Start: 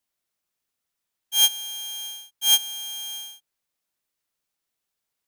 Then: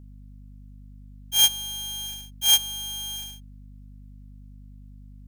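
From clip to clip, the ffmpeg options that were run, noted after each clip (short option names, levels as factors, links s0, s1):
-af "bandreject=f=60:t=h:w=6,bandreject=f=120:t=h:w=6,bandreject=f=180:t=h:w=6,bandreject=f=240:t=h:w=6,bandreject=f=300:t=h:w=6,acrusher=bits=3:mode=log:mix=0:aa=0.000001,aeval=exprs='val(0)+0.00631*(sin(2*PI*50*n/s)+sin(2*PI*2*50*n/s)/2+sin(2*PI*3*50*n/s)/3+sin(2*PI*4*50*n/s)/4+sin(2*PI*5*50*n/s)/5)':c=same"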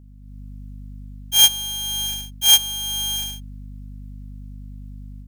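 -af "dynaudnorm=f=200:g=3:m=2.82"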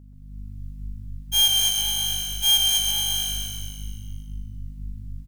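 -filter_complex "[0:a]asplit=2[s0][s1];[s1]aecho=0:1:222|444|666|888:0.398|0.155|0.0606|0.0236[s2];[s0][s2]amix=inputs=2:normalize=0,asoftclip=type=tanh:threshold=0.224,asplit=2[s3][s4];[s4]asplit=7[s5][s6][s7][s8][s9][s10][s11];[s5]adelay=130,afreqshift=-52,volume=0.631[s12];[s6]adelay=260,afreqshift=-104,volume=0.324[s13];[s7]adelay=390,afreqshift=-156,volume=0.164[s14];[s8]adelay=520,afreqshift=-208,volume=0.0841[s15];[s9]adelay=650,afreqshift=-260,volume=0.0427[s16];[s10]adelay=780,afreqshift=-312,volume=0.0219[s17];[s11]adelay=910,afreqshift=-364,volume=0.0111[s18];[s12][s13][s14][s15][s16][s17][s18]amix=inputs=7:normalize=0[s19];[s3][s19]amix=inputs=2:normalize=0,volume=0.891"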